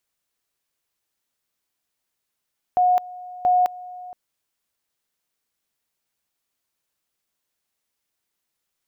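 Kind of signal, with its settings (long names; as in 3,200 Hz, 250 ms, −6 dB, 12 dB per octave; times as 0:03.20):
tone at two levels in turn 725 Hz −14 dBFS, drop 20 dB, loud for 0.21 s, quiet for 0.47 s, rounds 2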